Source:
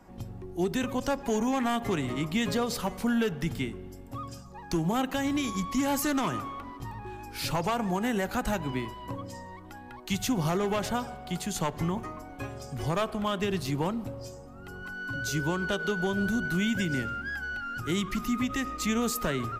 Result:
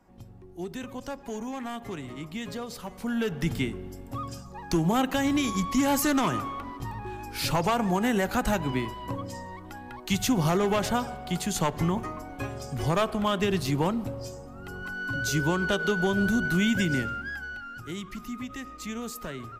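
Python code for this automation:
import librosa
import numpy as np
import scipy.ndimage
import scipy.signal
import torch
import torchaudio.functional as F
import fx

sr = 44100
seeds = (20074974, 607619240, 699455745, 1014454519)

y = fx.gain(x, sr, db=fx.line((2.86, -7.5), (3.48, 3.5), (16.91, 3.5), (17.95, -7.5)))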